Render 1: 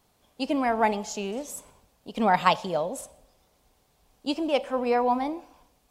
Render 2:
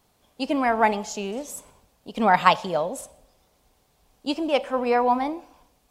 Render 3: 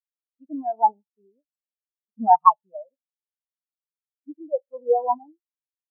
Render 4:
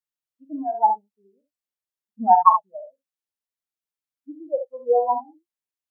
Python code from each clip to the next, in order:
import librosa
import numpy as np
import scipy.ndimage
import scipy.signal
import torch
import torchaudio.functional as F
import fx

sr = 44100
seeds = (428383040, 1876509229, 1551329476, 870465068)

y1 = fx.dynamic_eq(x, sr, hz=1500.0, q=0.84, threshold_db=-35.0, ratio=4.0, max_db=4)
y1 = y1 * librosa.db_to_amplitude(1.5)
y2 = fx.spectral_expand(y1, sr, expansion=4.0)
y3 = fx.room_early_taps(y2, sr, ms=(41, 70), db=(-10.0, -8.0))